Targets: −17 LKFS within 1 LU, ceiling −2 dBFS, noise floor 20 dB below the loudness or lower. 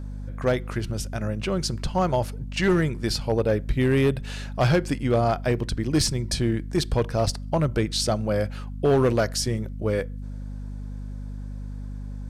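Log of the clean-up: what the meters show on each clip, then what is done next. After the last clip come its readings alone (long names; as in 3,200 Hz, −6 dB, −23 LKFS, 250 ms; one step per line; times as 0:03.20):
share of clipped samples 0.9%; peaks flattened at −14.5 dBFS; mains hum 50 Hz; hum harmonics up to 250 Hz; level of the hum −31 dBFS; integrated loudness −24.5 LKFS; sample peak −14.5 dBFS; target loudness −17.0 LKFS
→ clipped peaks rebuilt −14.5 dBFS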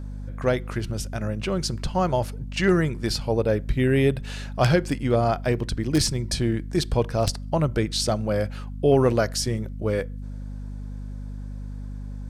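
share of clipped samples 0.0%; mains hum 50 Hz; hum harmonics up to 250 Hz; level of the hum −31 dBFS
→ mains-hum notches 50/100/150/200/250 Hz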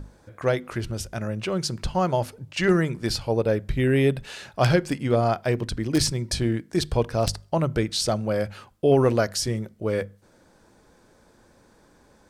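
mains hum none found; integrated loudness −24.5 LKFS; sample peak −6.0 dBFS; target loudness −17.0 LKFS
→ level +7.5 dB
brickwall limiter −2 dBFS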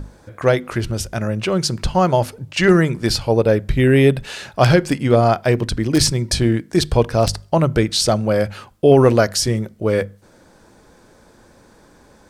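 integrated loudness −17.5 LKFS; sample peak −2.0 dBFS; background noise floor −50 dBFS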